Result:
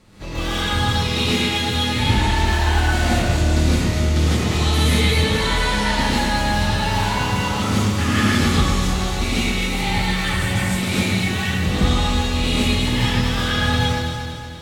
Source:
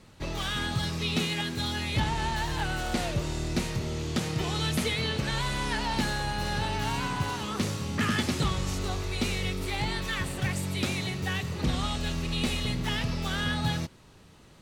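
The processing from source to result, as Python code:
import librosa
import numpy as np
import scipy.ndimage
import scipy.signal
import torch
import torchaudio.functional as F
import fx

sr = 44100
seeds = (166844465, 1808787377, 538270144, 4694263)

y = fx.echo_alternate(x, sr, ms=117, hz=2500.0, feedback_pct=73, wet_db=-2)
y = fx.rev_gated(y, sr, seeds[0], gate_ms=190, shape='rising', drr_db=-7.0)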